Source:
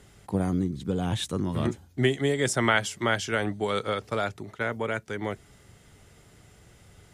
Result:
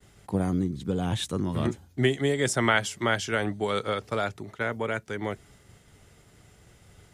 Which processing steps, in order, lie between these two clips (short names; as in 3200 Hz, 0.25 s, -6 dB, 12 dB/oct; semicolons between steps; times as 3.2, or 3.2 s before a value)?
expander -52 dBFS